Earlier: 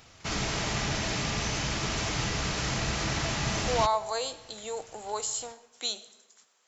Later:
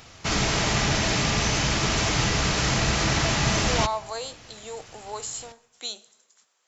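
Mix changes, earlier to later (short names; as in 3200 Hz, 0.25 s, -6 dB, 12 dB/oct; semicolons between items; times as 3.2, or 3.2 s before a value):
speech: send -8.0 dB; background +7.0 dB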